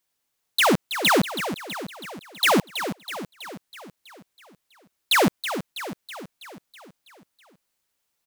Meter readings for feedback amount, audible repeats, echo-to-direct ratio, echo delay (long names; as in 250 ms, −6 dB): 57%, 6, −8.5 dB, 325 ms